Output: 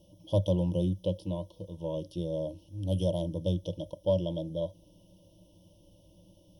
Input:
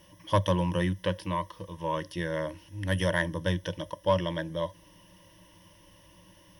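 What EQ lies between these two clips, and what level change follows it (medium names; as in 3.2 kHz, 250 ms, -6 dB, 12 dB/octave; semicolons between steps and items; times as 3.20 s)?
elliptic band-stop 730–3300 Hz, stop band 70 dB; treble shelf 2.8 kHz -9.5 dB; 0.0 dB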